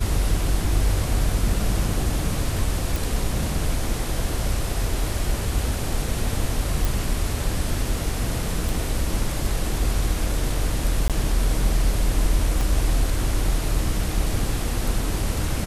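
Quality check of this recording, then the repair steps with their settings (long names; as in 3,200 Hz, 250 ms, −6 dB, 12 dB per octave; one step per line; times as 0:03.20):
0:02.96: click
0:06.85: click
0:08.69: click
0:11.08–0:11.10: drop-out 17 ms
0:12.61: click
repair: click removal
repair the gap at 0:11.08, 17 ms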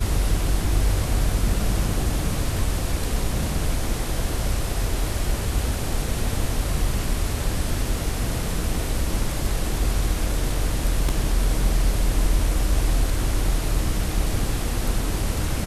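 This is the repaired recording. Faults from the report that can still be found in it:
0:12.61: click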